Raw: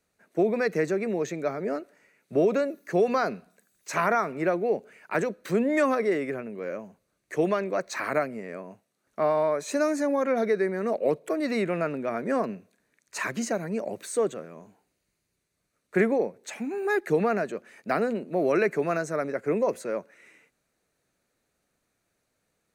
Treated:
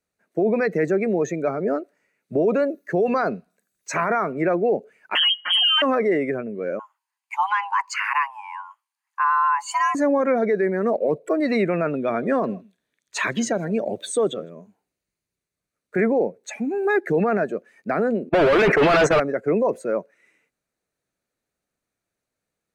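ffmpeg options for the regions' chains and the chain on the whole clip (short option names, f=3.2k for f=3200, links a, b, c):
-filter_complex "[0:a]asettb=1/sr,asplit=3[a][b][c];[a]atrim=end=5.154[d];[b]atrim=start=5.15:end=5.82,asetpts=PTS-STARTPTS,afade=t=in:d=0.004:c=qsin,afade=t=out:st=0.666:d=0.004:c=qsin,lowpass=f=2.9k:t=q:w=0.5098,lowpass=f=2.9k:t=q:w=0.6013,lowpass=f=2.9k:t=q:w=0.9,lowpass=f=2.9k:t=q:w=2.563,afreqshift=-3400,acontrast=88,aecho=1:1:5.6:0.78,atrim=end_sample=29547[e];[c]atrim=start=5.816[f];[d][e]acrossfade=d=0.004:c1=hsin:c2=qsin[g];[g][f]acrossfade=d=0.004:c1=qsin:c2=hsin,asettb=1/sr,asplit=3[h][i][j];[h]atrim=end=6.794[k];[i]atrim=start=6.79:end=9.95,asetpts=PTS-STARTPTS,afade=t=in:d=0.004:c=qsin,afade=t=out:st=3.156:d=0.004:c=qsin,highpass=f=460:w=0.5412,highpass=f=460:w=1.3066,afreqshift=420[l];[j]atrim=start=9.946[m];[k][l]acrossfade=d=0.004:c1=hsin:c2=qsin[n];[n][m]acrossfade=d=0.004:c1=qsin:c2=hsin,asettb=1/sr,asplit=3[o][p][q];[o]atrim=end=11.934[r];[p]atrim=start=11.93:end=14.5,asetpts=PTS-STARTPTS,afade=t=in:d=0.004:c=qsin,afade=t=out:st=2.566:d=0.004:c=qsin,equalizer=f=3.4k:w=4.3:g=14,aecho=1:1:159:0.0841,atrim=end_sample=113337[s];[q]atrim=start=14.496[t];[r][s]acrossfade=d=0.004:c1=hsin:c2=qsin[u];[u][t]acrossfade=d=0.004:c1=qsin:c2=hsin,asettb=1/sr,asplit=3[v][w][x];[v]atrim=end=18.294[y];[w]atrim=start=18.29:end=19.2,asetpts=PTS-STARTPTS,afade=t=in:d=0.004:c=qsin,afade=t=out:st=0.906:d=0.004:c=qsin,agate=range=-43dB:threshold=-36dB:ratio=16:release=100:detection=peak,acrossover=split=2600[z][aa];[aa]acompressor=threshold=-51dB:ratio=4:attack=1:release=60[ab];[z][ab]amix=inputs=2:normalize=0,asplit=2[ac][ad];[ad]highpass=f=720:p=1,volume=38dB,asoftclip=type=tanh:threshold=-12.5dB[ae];[ac][ae]amix=inputs=2:normalize=0,lowpass=f=3k:p=1,volume=-6dB[af];[x]atrim=start=19.196[ag];[y][af]acrossfade=d=0.004:c1=hsin:c2=qsin[ah];[ah][ag]acrossfade=d=0.004:c1=qsin:c2=hsin,acontrast=29,alimiter=limit=-14dB:level=0:latency=1:release=12,afftdn=nr=14:nf=-33,volume=1.5dB"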